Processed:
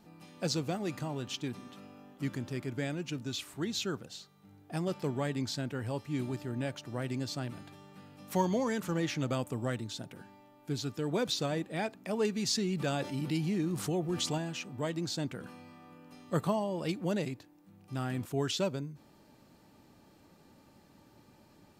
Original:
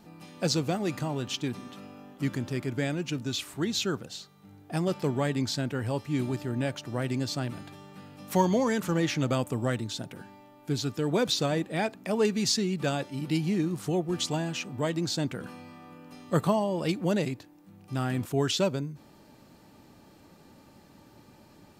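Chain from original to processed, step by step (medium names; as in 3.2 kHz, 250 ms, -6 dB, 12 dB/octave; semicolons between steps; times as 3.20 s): 12.51–14.38 s: level flattener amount 50%; trim -5.5 dB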